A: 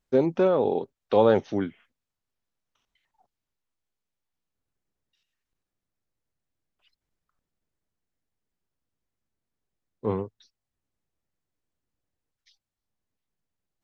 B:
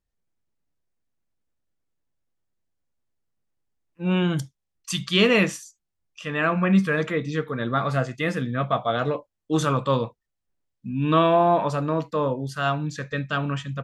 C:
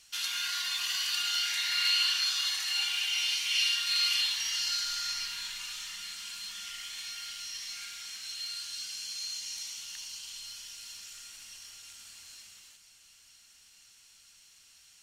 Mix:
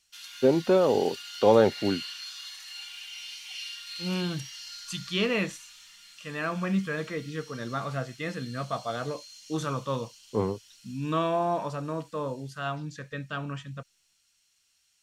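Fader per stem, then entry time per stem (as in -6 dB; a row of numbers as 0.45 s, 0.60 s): 0.0 dB, -8.5 dB, -11.0 dB; 0.30 s, 0.00 s, 0.00 s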